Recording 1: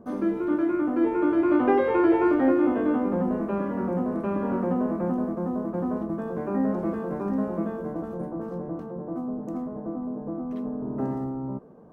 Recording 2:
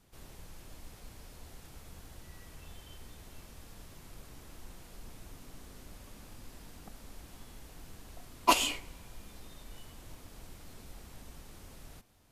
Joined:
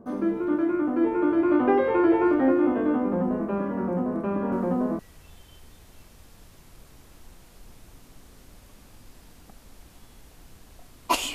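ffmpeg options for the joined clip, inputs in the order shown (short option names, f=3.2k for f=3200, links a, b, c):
-filter_complex "[1:a]asplit=2[a][b];[0:a]apad=whole_dur=11.34,atrim=end=11.34,atrim=end=4.992[c];[b]atrim=start=2.368:end=8.72[d];[a]atrim=start=1.9:end=2.37,asetpts=PTS-STARTPTS,volume=-7dB,afade=t=in:d=0.004:c=hsin,afade=t=out:st=0.466:d=0.004:c=hsin,adelay=4520[e];[c][d]acrossfade=d=0.004:c1=hsin:c2=hsin[f];[f][e]amix=inputs=2:normalize=0"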